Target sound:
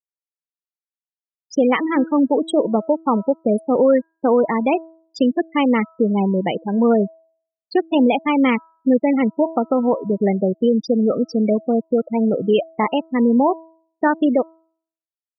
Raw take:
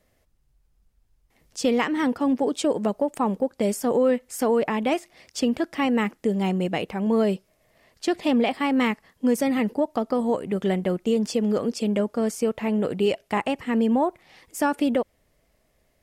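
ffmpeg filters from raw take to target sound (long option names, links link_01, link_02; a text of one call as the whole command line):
ffmpeg -i in.wav -af "asetrate=45938,aresample=44100,afftfilt=real='re*gte(hypot(re,im),0.0891)':imag='im*gte(hypot(re,im),0.0891)':win_size=1024:overlap=0.75,bandreject=frequency=325.1:width_type=h:width=4,bandreject=frequency=650.2:width_type=h:width=4,bandreject=frequency=975.3:width_type=h:width=4,bandreject=frequency=1300.4:width_type=h:width=4,bandreject=frequency=1625.5:width_type=h:width=4,volume=6dB" out.wav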